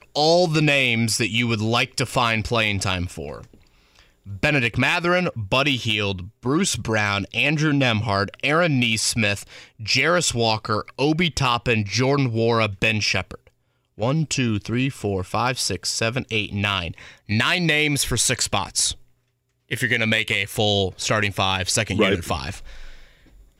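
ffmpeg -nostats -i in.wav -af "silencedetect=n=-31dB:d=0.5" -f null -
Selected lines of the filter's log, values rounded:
silence_start: 3.41
silence_end: 4.28 | silence_duration: 0.87
silence_start: 13.35
silence_end: 13.99 | silence_duration: 0.65
silence_start: 18.93
silence_end: 19.71 | silence_duration: 0.78
silence_start: 22.90
silence_end: 23.59 | silence_duration: 0.69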